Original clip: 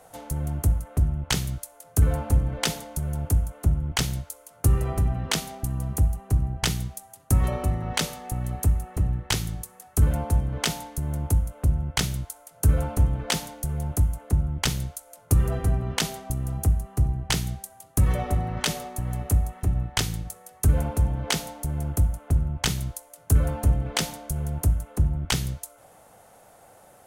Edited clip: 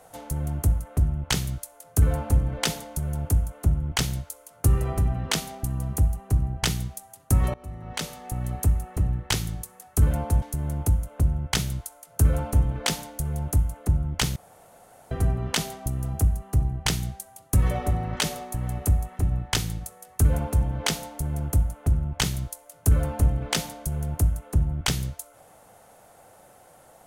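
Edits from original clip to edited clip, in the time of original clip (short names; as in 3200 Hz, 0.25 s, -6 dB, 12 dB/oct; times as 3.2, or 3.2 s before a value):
7.54–8.46 fade in, from -22.5 dB
10.42–10.86 cut
14.8–15.55 room tone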